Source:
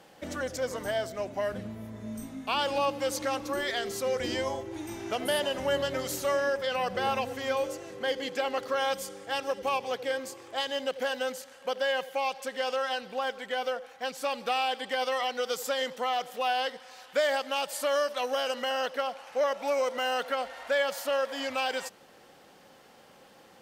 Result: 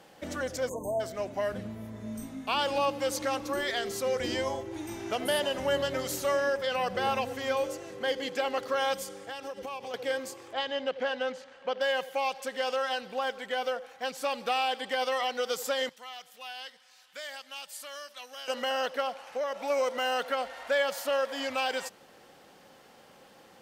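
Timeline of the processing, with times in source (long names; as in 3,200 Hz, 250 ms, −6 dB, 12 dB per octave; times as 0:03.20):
0:00.69–0:01.01: time-frequency box erased 1,100–6,200 Hz
0:09.03–0:09.94: downward compressor, threshold −35 dBFS
0:10.53–0:11.81: low-pass filter 3,600 Hz
0:15.89–0:18.48: guitar amp tone stack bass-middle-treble 5-5-5
0:19.20–0:19.70: downward compressor 2.5 to 1, threshold −30 dBFS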